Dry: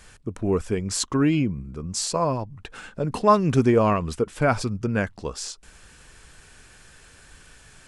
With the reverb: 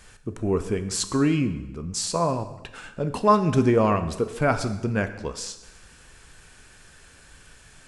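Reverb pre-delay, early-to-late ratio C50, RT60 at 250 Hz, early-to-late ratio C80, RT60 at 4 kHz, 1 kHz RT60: 7 ms, 12.0 dB, 1.0 s, 13.5 dB, 0.95 s, 1.0 s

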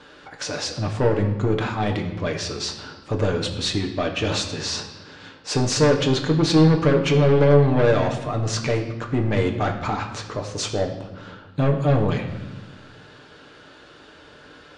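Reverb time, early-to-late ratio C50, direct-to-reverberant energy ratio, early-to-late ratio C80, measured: 1.1 s, 8.0 dB, 1.5 dB, 10.0 dB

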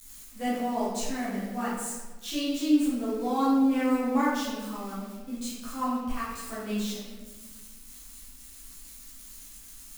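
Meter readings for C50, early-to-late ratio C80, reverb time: -1.0 dB, 2.5 dB, 1.3 s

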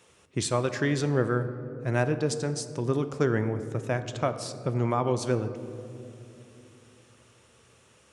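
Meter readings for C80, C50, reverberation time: 12.5 dB, 11.5 dB, 2.8 s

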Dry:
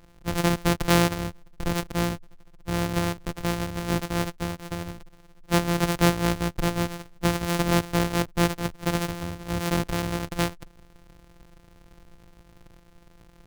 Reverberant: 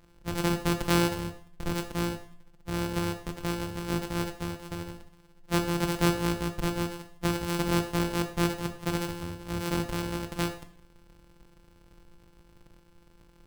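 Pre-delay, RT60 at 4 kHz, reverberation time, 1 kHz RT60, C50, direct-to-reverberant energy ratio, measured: 8 ms, 0.50 s, 0.50 s, 0.50 s, 11.0 dB, 7.0 dB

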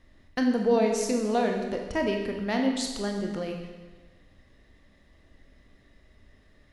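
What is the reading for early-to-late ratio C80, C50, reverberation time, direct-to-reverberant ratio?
6.0 dB, 4.5 dB, 1.3 s, 2.0 dB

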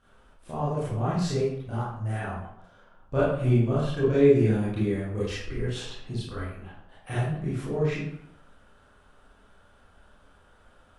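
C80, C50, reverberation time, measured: 3.5 dB, -1.0 dB, 0.75 s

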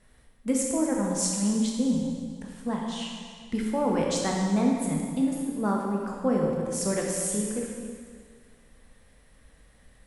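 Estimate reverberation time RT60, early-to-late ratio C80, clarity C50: 1.9 s, 2.0 dB, 0.5 dB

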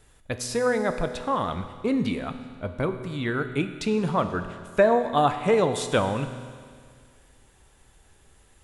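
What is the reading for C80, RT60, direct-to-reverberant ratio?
10.5 dB, 2.0 s, 8.0 dB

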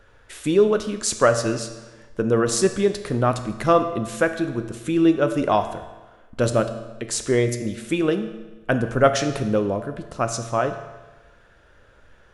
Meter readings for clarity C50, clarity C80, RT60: 10.0 dB, 11.5 dB, 1.2 s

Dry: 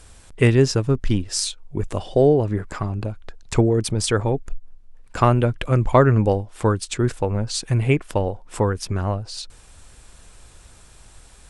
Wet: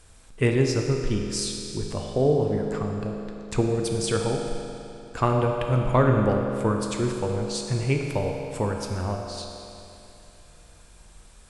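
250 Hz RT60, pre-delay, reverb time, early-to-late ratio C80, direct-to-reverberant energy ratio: 2.9 s, 9 ms, 2.9 s, 3.5 dB, 1.0 dB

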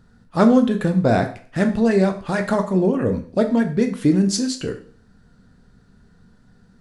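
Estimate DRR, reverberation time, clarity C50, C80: 6.0 dB, 0.45 s, 12.0 dB, 15.5 dB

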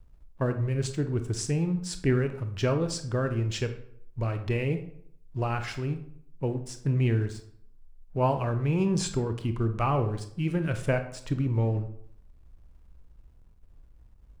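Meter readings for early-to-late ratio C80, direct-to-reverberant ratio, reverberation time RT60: 13.5 dB, 7.5 dB, 0.65 s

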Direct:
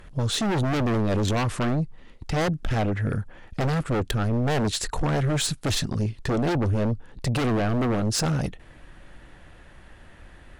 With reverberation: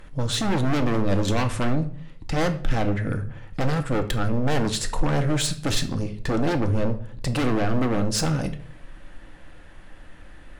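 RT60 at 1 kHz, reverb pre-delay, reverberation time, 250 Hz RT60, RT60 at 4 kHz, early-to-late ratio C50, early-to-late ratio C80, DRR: 0.45 s, 3 ms, 0.55 s, 0.60 s, 0.40 s, 12.5 dB, 17.5 dB, 6.5 dB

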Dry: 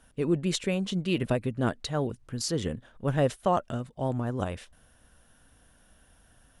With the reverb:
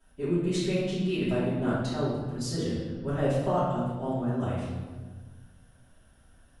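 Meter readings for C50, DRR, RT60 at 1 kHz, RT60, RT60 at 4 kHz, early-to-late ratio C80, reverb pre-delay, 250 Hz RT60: -1.0 dB, -14.5 dB, 1.4 s, 1.5 s, 0.95 s, 2.0 dB, 3 ms, 2.0 s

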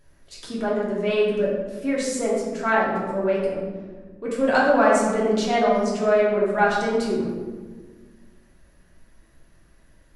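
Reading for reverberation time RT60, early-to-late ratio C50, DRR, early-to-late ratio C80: 1.5 s, 0.5 dB, -6.0 dB, 3.0 dB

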